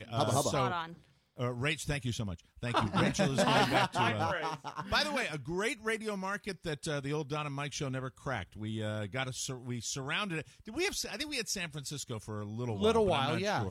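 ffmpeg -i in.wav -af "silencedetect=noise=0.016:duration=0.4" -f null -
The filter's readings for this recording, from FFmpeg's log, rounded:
silence_start: 0.86
silence_end: 1.39 | silence_duration: 0.54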